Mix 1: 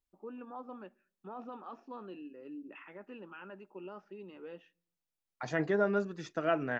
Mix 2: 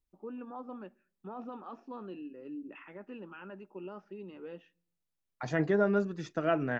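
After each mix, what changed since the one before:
master: add bass shelf 280 Hz +7 dB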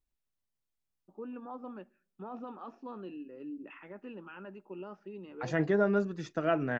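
first voice: entry +0.95 s

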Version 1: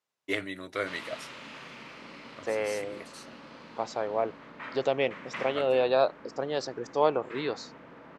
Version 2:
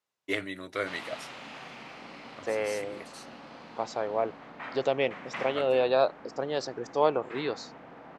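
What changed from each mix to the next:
background: add peaking EQ 750 Hz +14 dB 0.2 oct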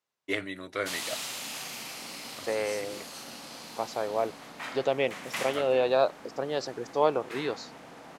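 background: remove low-pass 2.1 kHz 12 dB/octave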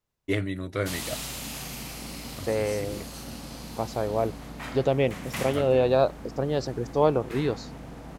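master: remove frequency weighting A

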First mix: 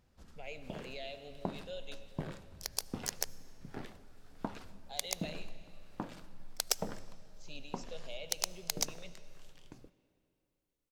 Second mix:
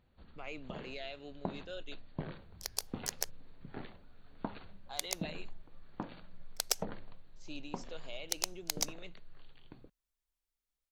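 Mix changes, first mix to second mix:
speech: remove static phaser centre 320 Hz, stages 6; first sound: add brick-wall FIR low-pass 4.6 kHz; reverb: off

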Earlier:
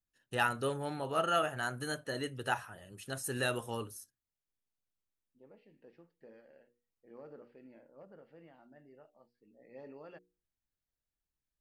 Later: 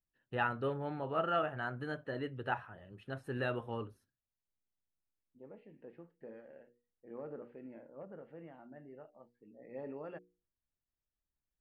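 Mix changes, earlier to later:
second voice +7.0 dB; master: add distance through air 470 m

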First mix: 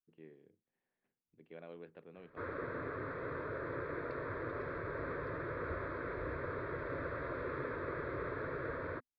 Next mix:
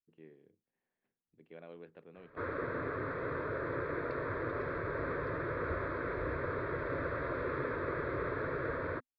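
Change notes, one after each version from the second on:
background +4.0 dB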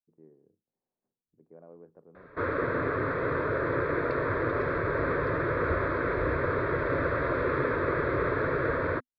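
speech: add low-pass 1.1 kHz 24 dB/octave; background +8.5 dB

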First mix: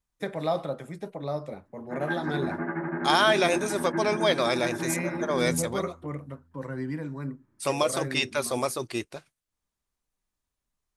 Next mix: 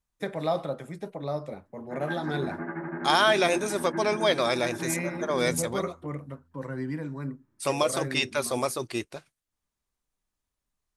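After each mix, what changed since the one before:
background -3.5 dB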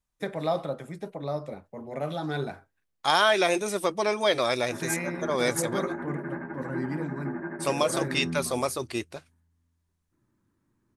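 background: entry +2.80 s

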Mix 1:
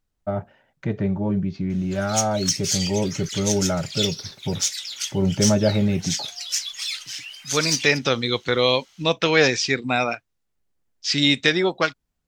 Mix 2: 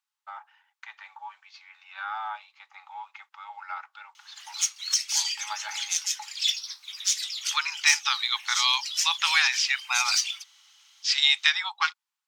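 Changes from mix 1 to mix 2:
background: entry +2.45 s; master: add rippled Chebyshev high-pass 820 Hz, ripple 3 dB

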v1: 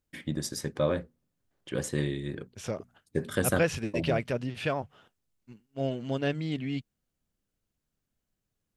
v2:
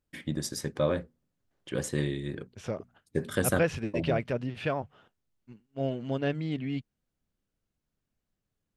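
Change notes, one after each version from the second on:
second voice: add treble shelf 4.8 kHz -11.5 dB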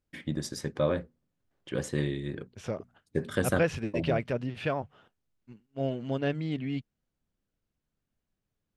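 first voice: add treble shelf 8.7 kHz -11 dB

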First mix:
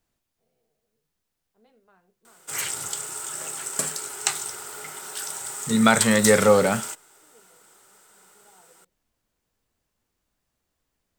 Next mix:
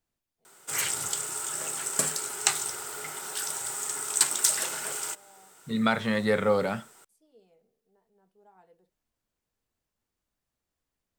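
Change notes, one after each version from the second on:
second voice -7.5 dB; background: entry -1.80 s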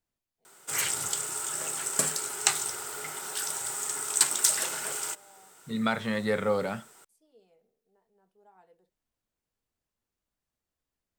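first voice: add bass shelf 240 Hz -6 dB; second voice -3.0 dB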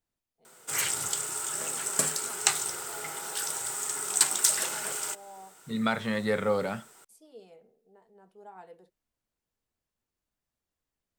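first voice +11.5 dB

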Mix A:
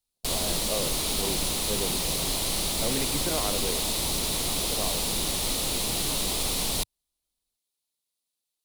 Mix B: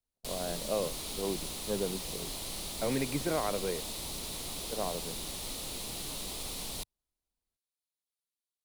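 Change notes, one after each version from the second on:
background -11.5 dB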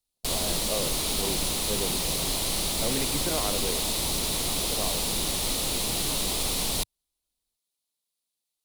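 background +11.5 dB

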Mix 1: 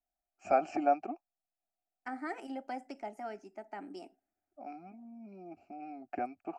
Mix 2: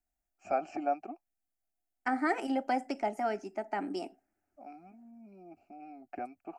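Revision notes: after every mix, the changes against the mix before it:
first voice -3.5 dB; second voice +9.5 dB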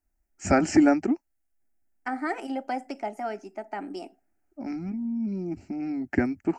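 first voice: remove vowel filter a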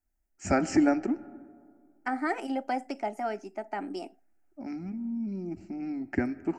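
first voice -7.0 dB; reverb: on, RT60 2.0 s

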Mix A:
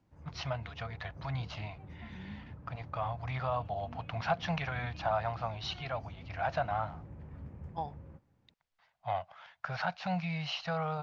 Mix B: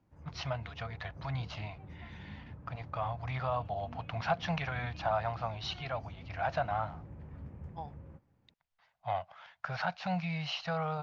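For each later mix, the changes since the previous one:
second voice -6.0 dB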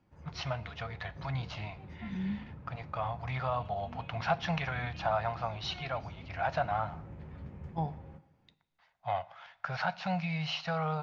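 second voice: remove high-pass 1.1 kHz 6 dB/octave; background: add peaking EQ 3.8 kHz +7.5 dB 0.93 oct; reverb: on, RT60 1.0 s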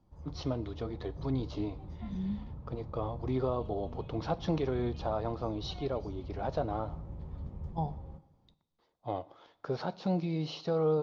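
first voice: remove FFT filter 170 Hz 0 dB, 340 Hz -30 dB, 690 Hz +6 dB, 1.6 kHz +3 dB; background: remove high-pass 92 Hz 12 dB/octave; master: add high-order bell 2 kHz -11 dB 1.2 oct

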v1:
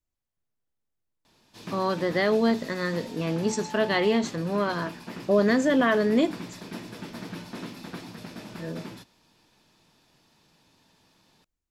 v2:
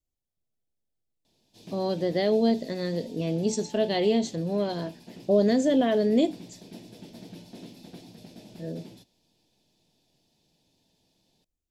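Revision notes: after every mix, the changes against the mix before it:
background -6.0 dB; master: add FFT filter 730 Hz 0 dB, 1.2 kHz -18 dB, 3.4 kHz 0 dB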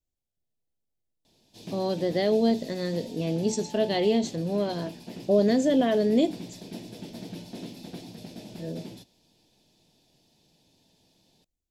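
background +5.0 dB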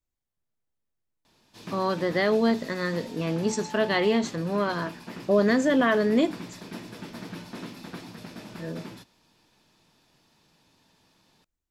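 master: remove FFT filter 730 Hz 0 dB, 1.2 kHz -18 dB, 3.4 kHz 0 dB

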